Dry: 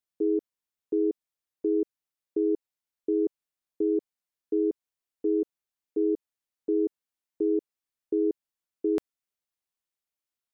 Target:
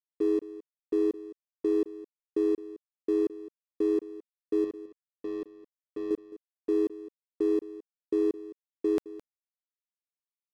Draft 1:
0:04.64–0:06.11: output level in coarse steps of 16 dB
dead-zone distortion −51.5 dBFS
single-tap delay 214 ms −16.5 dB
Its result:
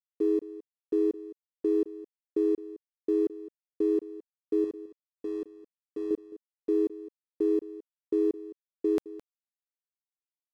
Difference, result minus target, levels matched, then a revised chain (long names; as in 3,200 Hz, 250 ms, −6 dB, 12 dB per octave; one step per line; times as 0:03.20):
dead-zone distortion: distortion −6 dB
0:04.64–0:06.11: output level in coarse steps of 16 dB
dead-zone distortion −45 dBFS
single-tap delay 214 ms −16.5 dB